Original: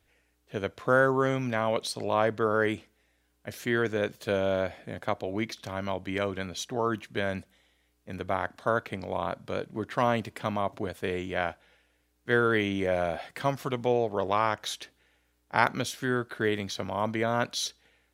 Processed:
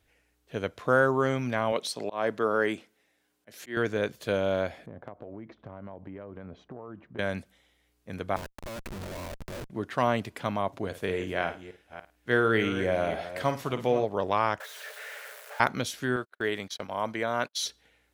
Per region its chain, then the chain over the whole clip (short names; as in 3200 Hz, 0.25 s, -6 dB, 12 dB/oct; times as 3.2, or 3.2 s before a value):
1.72–3.77 HPF 180 Hz + auto swell 0.189 s
4.86–7.19 LPF 1000 Hz + compressor 12:1, threshold -37 dBFS + mismatched tape noise reduction decoder only
8.36–9.7 ripple EQ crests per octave 1.4, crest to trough 9 dB + compressor 12:1, threshold -29 dBFS + Schmitt trigger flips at -40.5 dBFS
10.85–14.05 reverse delay 0.287 s, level -12 dB + flutter echo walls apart 9.1 m, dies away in 0.28 s
14.6–15.6 infinite clipping + rippled Chebyshev high-pass 420 Hz, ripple 9 dB + bell 4500 Hz -3.5 dB 2.1 oct
16.16–17.63 gate -37 dBFS, range -41 dB + low shelf 260 Hz -9.5 dB
whole clip: dry